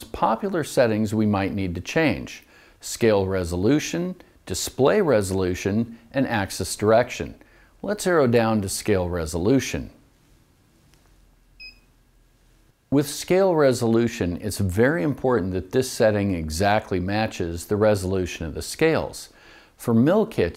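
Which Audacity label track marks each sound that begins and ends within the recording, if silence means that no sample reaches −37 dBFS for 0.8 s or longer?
10.940000	11.690000	sound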